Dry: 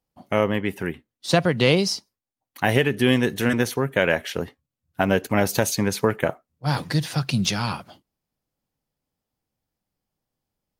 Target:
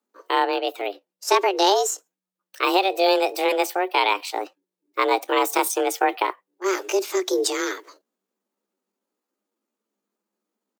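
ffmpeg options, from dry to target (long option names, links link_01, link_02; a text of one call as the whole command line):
ffmpeg -i in.wav -af "afreqshift=140,asetrate=58866,aresample=44100,atempo=0.749154" out.wav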